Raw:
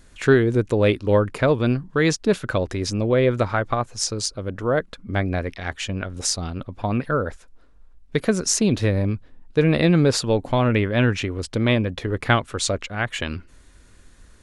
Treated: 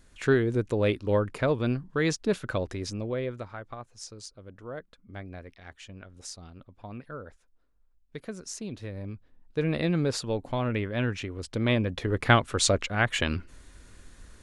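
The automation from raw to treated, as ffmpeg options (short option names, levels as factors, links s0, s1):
-af "volume=3.55,afade=t=out:st=2.6:d=0.85:silence=0.281838,afade=t=in:st=8.89:d=0.76:silence=0.375837,afade=t=in:st=11.33:d=1.33:silence=0.334965"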